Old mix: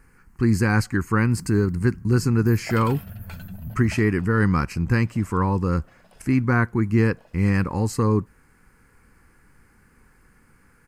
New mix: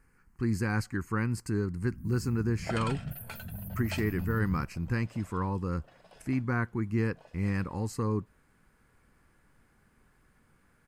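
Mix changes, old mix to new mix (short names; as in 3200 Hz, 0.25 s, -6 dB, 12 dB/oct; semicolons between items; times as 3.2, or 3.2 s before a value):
speech -10.0 dB; first sound: entry +0.65 s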